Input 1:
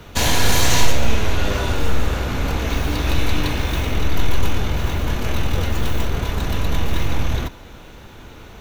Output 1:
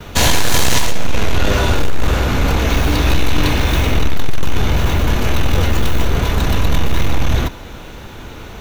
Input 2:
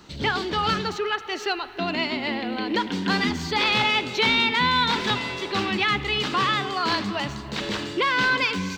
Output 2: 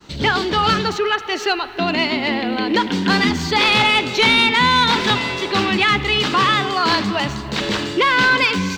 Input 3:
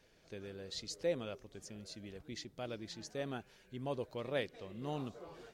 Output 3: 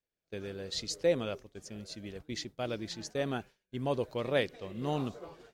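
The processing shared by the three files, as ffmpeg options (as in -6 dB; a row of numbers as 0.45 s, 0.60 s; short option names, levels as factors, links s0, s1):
-af "agate=range=0.0224:threshold=0.00501:ratio=3:detection=peak,aeval=exprs='0.891*(cos(1*acos(clip(val(0)/0.891,-1,1)))-cos(1*PI/2))+0.447*(cos(5*acos(clip(val(0)/0.891,-1,1)))-cos(5*PI/2))':c=same,volume=0.668"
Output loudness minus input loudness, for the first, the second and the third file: +4.5 LU, +7.0 LU, +7.5 LU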